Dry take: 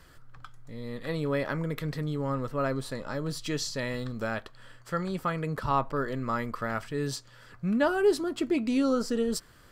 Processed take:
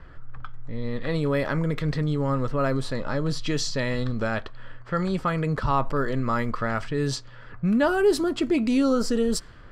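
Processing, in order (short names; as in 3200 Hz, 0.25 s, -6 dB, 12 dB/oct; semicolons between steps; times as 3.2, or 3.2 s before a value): low-pass opened by the level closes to 1900 Hz, open at -24 dBFS; low shelf 76 Hz +8.5 dB; in parallel at +1 dB: limiter -25 dBFS, peak gain reduction 12 dB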